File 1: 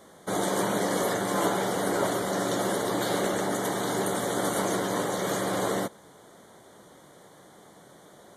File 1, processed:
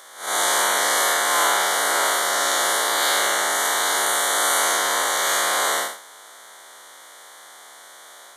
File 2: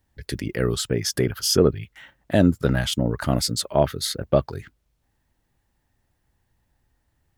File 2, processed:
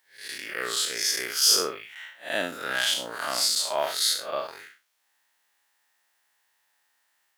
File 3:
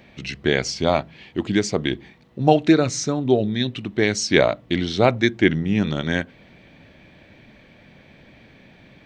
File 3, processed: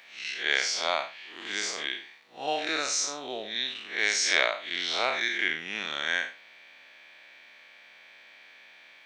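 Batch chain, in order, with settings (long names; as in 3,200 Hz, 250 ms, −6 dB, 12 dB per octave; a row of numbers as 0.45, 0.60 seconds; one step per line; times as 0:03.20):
spectrum smeared in time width 146 ms
high-pass filter 1,200 Hz 12 dB per octave
normalise the peak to −6 dBFS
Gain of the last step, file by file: +16.0, +9.0, +4.0 decibels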